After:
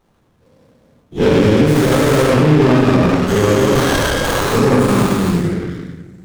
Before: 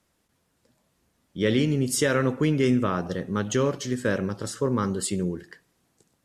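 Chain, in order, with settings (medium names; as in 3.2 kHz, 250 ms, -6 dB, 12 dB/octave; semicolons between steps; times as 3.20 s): every event in the spectrogram widened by 480 ms; 3.75–4.52 s: frequency weighting ITU-R 468; reverb removal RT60 1.4 s; simulated room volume 760 m³, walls mixed, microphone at 3.9 m; loudness maximiser +3 dB; sliding maximum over 17 samples; trim -1 dB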